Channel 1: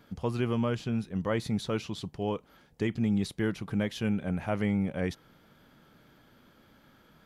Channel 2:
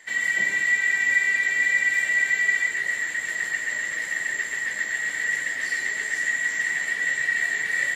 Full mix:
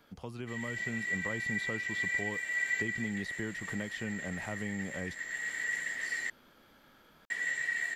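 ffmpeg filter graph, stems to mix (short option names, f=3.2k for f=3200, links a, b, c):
-filter_complex "[0:a]equalizer=f=110:w=0.46:g=-9,acrossover=split=250|3500[a][b][c];[a]acompressor=threshold=-38dB:ratio=4[d];[b]acompressor=threshold=-43dB:ratio=4[e];[c]acompressor=threshold=-59dB:ratio=4[f];[d][e][f]amix=inputs=3:normalize=0,volume=-2dB,asplit=2[g][h];[1:a]adelay=400,volume=-12dB,asplit=3[i][j][k];[i]atrim=end=6.3,asetpts=PTS-STARTPTS,afade=t=out:st=6.296:d=0.004:c=hsin[l];[j]atrim=start=6.3:end=7.3,asetpts=PTS-STARTPTS,volume=0[m];[k]atrim=start=7.3,asetpts=PTS-STARTPTS,afade=t=in:d=0.004:c=hsin[n];[l][m][n]concat=n=3:v=0:a=1[o];[h]apad=whole_len=368614[p];[o][p]sidechaincompress=threshold=-41dB:ratio=8:attack=11:release=727[q];[g][q]amix=inputs=2:normalize=0,dynaudnorm=f=300:g=5:m=3dB"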